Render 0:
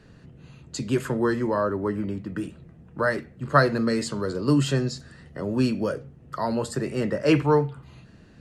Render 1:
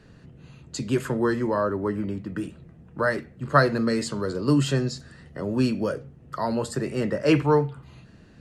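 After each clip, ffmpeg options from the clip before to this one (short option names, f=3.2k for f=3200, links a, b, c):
-af anull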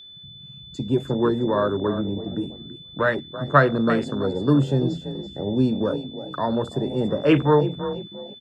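-filter_complex "[0:a]asplit=5[a][b][c][d][e];[b]adelay=333,afreqshift=31,volume=-11dB[f];[c]adelay=666,afreqshift=62,volume=-19.9dB[g];[d]adelay=999,afreqshift=93,volume=-28.7dB[h];[e]adelay=1332,afreqshift=124,volume=-37.6dB[i];[a][f][g][h][i]amix=inputs=5:normalize=0,afwtdn=0.0316,aeval=exprs='val(0)+0.00631*sin(2*PI*3500*n/s)':c=same,volume=2.5dB"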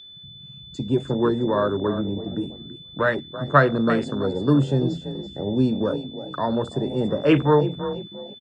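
-af "aresample=22050,aresample=44100"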